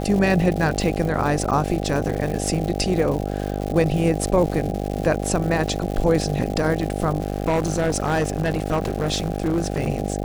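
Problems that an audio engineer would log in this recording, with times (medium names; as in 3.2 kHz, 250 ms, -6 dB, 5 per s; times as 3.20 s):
buzz 50 Hz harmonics 16 -26 dBFS
crackle 220 per s -27 dBFS
7.20–9.88 s: clipped -16 dBFS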